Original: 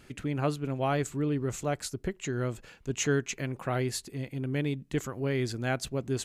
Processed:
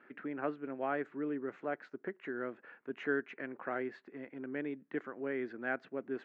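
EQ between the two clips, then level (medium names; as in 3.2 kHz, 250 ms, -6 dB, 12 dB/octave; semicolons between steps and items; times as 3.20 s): dynamic bell 1.1 kHz, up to -5 dB, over -45 dBFS, Q 1.1; high-pass 240 Hz 24 dB/octave; four-pole ladder low-pass 1.9 kHz, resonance 50%; +4.0 dB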